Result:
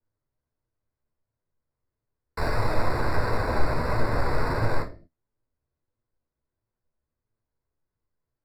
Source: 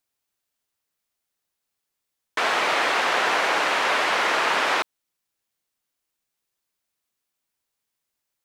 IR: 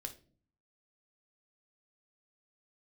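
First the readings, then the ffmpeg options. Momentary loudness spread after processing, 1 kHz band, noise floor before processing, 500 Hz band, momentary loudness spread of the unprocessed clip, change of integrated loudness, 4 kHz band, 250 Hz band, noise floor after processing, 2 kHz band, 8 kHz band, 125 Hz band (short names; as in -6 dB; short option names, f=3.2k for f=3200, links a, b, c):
6 LU, -7.5 dB, -82 dBFS, -2.0 dB, 5 LU, -6.5 dB, -16.5 dB, +4.0 dB, under -85 dBFS, -11.5 dB, -15.5 dB, n/a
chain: -filter_complex "[0:a]highpass=130,lowpass=6.5k,acrusher=samples=14:mix=1:aa=0.000001,acrossover=split=820|940[a][b][c];[c]aexciter=amount=2.3:drive=1.2:freq=4.1k[d];[a][b][d]amix=inputs=3:normalize=0,flanger=delay=8.4:depth=6.8:regen=43:speed=1.5:shape=triangular,aemphasis=mode=reproduction:type=riaa[e];[1:a]atrim=start_sample=2205,afade=t=out:st=0.3:d=0.01,atrim=end_sample=13671[f];[e][f]afir=irnorm=-1:irlink=0,adynamicequalizer=threshold=0.00501:dfrequency=2200:dqfactor=0.7:tfrequency=2200:tqfactor=0.7:attack=5:release=100:ratio=0.375:range=2.5:mode=cutabove:tftype=highshelf"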